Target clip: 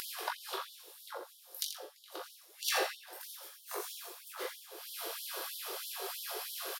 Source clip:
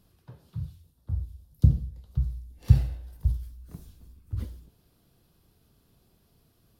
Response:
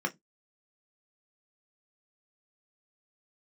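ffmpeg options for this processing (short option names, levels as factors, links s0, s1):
-filter_complex "[0:a]acompressor=mode=upward:threshold=0.0251:ratio=2.5,flanger=delay=18.5:depth=3:speed=1.1,aecho=1:1:84:0.335,asplit=2[s0][s1];[1:a]atrim=start_sample=2205,adelay=40[s2];[s1][s2]afir=irnorm=-1:irlink=0,volume=0.473[s3];[s0][s3]amix=inputs=2:normalize=0,afftfilt=real='re*gte(b*sr/1024,340*pow(3000/340,0.5+0.5*sin(2*PI*3.1*pts/sr)))':imag='im*gte(b*sr/1024,340*pow(3000/340,0.5+0.5*sin(2*PI*3.1*pts/sr)))':win_size=1024:overlap=0.75,volume=5.96"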